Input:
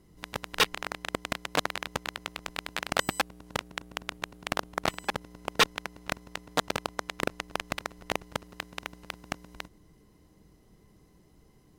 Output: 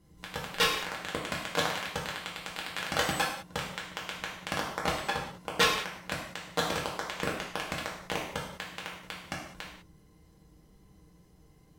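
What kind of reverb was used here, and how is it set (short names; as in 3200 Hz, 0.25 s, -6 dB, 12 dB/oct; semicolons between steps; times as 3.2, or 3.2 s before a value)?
non-linear reverb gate 0.23 s falling, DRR -4 dB; gain -5.5 dB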